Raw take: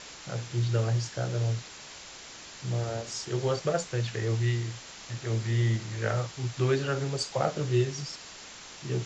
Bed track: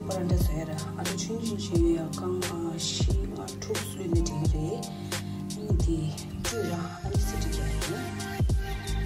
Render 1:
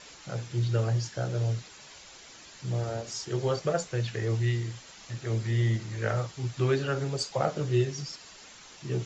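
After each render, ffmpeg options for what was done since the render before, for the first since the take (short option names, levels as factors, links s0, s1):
-af "afftdn=nr=7:nf=-46"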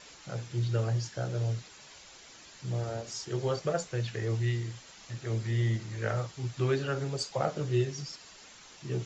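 -af "volume=0.75"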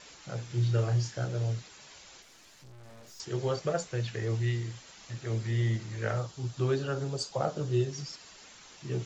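-filter_complex "[0:a]asettb=1/sr,asplit=3[s0][s1][s2];[s0]atrim=end=0.454[s3];[s1]atrim=start=0.45:end=1.25,asetpts=PTS-STARTPTS,afade=t=in:d=0.004:c=qsin,afade=t=out:st=0.796:d=0.004:c=qsin,asplit=2[s4][s5];[s5]adelay=33,volume=0.501[s6];[s4][s6]amix=inputs=2:normalize=0,atrim=end_sample=35280[s7];[s2]atrim=start=1.246[s8];[s3][s7]acrossfade=d=0.004:c1=hsin:c2=qsin[s9];[s9][s8]acrossfade=d=0.004:c1=qsin:c2=hsin,asettb=1/sr,asplit=3[s10][s11][s12];[s10]atrim=end=2.224[s13];[s11]atrim=start=2.22:end=3.2,asetpts=PTS-STARTPTS,afade=t=in:d=0.004:c=qsin,afade=t=out:st=0.976:d=0.004:c=qsin,aeval=exprs='(tanh(355*val(0)+0.75)-tanh(0.75))/355':c=same[s14];[s12]atrim=start=3.196[s15];[s13][s14]acrossfade=d=0.004:c1=hsin:c2=qsin[s16];[s16][s15]acrossfade=d=0.004:c1=qsin:c2=hsin,asettb=1/sr,asplit=3[s17][s18][s19];[s17]atrim=end=6.184[s20];[s18]atrim=start=6.18:end=7.93,asetpts=PTS-STARTPTS,afade=t=in:d=0.004:c=qsin,afade=t=out:st=1.746:d=0.004:c=qsin,equalizer=f=2100:t=o:w=0.73:g=-7.5[s21];[s19]atrim=start=7.926[s22];[s20][s21]acrossfade=d=0.004:c1=hsin:c2=qsin[s23];[s23][s22]acrossfade=d=0.004:c1=qsin:c2=hsin"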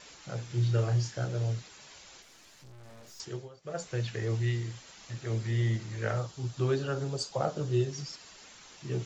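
-filter_complex "[0:a]asplit=3[s0][s1][s2];[s0]atrim=end=3.49,asetpts=PTS-STARTPTS,afade=t=out:st=3.21:d=0.28:silence=0.0841395[s3];[s1]atrim=start=3.49:end=3.62,asetpts=PTS-STARTPTS,volume=0.0841[s4];[s2]atrim=start=3.62,asetpts=PTS-STARTPTS,afade=t=in:d=0.28:silence=0.0841395[s5];[s3][s4][s5]concat=n=3:v=0:a=1"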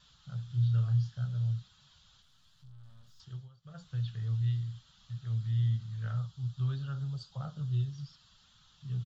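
-filter_complex "[0:a]acrossover=split=5800[s0][s1];[s1]acompressor=threshold=0.00158:ratio=4:attack=1:release=60[s2];[s0][s2]amix=inputs=2:normalize=0,firequalizer=gain_entry='entry(140,0);entry(330,-27);entry(1300,-9);entry(2200,-24);entry(3300,-4);entry(5700,-17)':delay=0.05:min_phase=1"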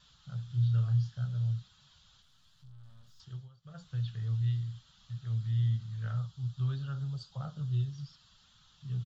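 -af anull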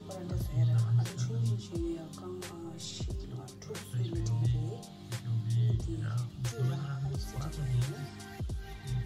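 -filter_complex "[1:a]volume=0.266[s0];[0:a][s0]amix=inputs=2:normalize=0"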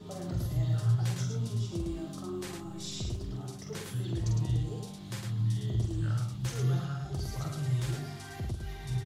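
-af "aecho=1:1:46.65|107.9:0.562|0.631"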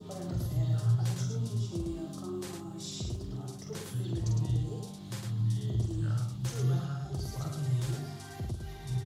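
-af "highpass=58,adynamicequalizer=threshold=0.001:dfrequency=2100:dqfactor=1:tfrequency=2100:tqfactor=1:attack=5:release=100:ratio=0.375:range=2.5:mode=cutabove:tftype=bell"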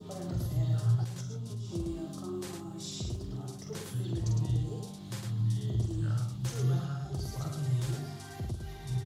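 -filter_complex "[0:a]asettb=1/sr,asplit=3[s0][s1][s2];[s0]atrim=end=1.044[s3];[s1]atrim=start=1.04:end=1.71,asetpts=PTS-STARTPTS,afade=t=in:d=0.004:c=qsin,afade=t=out:st=0.666:d=0.004:c=qsin,acompressor=threshold=0.0178:ratio=6:attack=3.2:release=140:knee=1:detection=peak[s4];[s2]atrim=start=1.706[s5];[s3][s4]acrossfade=d=0.004:c1=hsin:c2=qsin[s6];[s6][s5]acrossfade=d=0.004:c1=qsin:c2=hsin"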